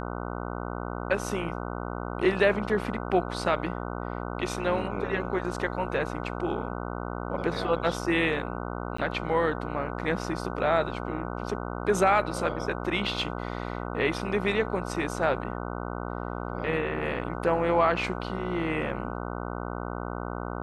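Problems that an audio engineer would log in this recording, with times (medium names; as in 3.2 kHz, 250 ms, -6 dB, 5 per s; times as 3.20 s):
buzz 60 Hz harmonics 25 -34 dBFS
8.97–8.98 s: dropout 14 ms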